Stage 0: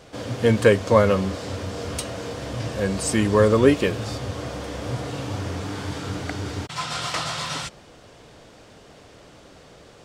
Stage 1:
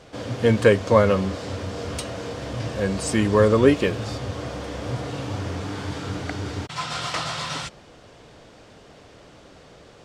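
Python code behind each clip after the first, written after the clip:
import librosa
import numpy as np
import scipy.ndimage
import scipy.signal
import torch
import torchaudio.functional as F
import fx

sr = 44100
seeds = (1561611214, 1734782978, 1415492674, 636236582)

y = fx.high_shelf(x, sr, hz=11000.0, db=-11.0)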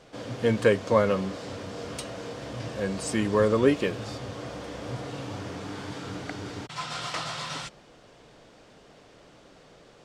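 y = fx.peak_eq(x, sr, hz=80.0, db=-15.0, octaves=0.42)
y = y * 10.0 ** (-5.0 / 20.0)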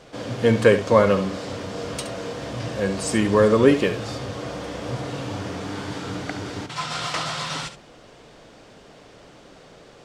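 y = x + 10.0 ** (-11.0 / 20.0) * np.pad(x, (int(70 * sr / 1000.0), 0))[:len(x)]
y = y * 10.0 ** (5.5 / 20.0)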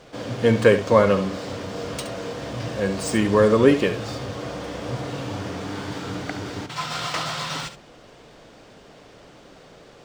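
y = scipy.ndimage.median_filter(x, 3, mode='constant')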